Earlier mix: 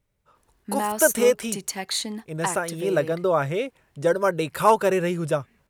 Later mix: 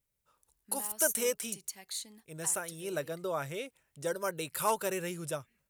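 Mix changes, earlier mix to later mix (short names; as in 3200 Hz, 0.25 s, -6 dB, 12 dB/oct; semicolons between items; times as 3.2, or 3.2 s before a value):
background -9.0 dB; master: add pre-emphasis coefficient 0.8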